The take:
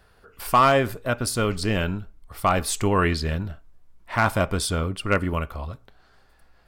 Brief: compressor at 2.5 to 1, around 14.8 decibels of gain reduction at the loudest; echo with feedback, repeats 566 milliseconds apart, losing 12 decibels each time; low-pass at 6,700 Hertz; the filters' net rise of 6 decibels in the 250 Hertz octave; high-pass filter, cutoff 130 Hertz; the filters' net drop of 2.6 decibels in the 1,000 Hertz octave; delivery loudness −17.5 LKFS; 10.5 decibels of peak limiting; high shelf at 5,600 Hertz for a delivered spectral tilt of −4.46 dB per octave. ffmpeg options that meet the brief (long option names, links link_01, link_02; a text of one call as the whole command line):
ffmpeg -i in.wav -af "highpass=130,lowpass=6700,equalizer=frequency=250:width_type=o:gain=8.5,equalizer=frequency=1000:width_type=o:gain=-4,highshelf=frequency=5600:gain=3,acompressor=threshold=-37dB:ratio=2.5,alimiter=level_in=3dB:limit=-24dB:level=0:latency=1,volume=-3dB,aecho=1:1:566|1132|1698:0.251|0.0628|0.0157,volume=21.5dB" out.wav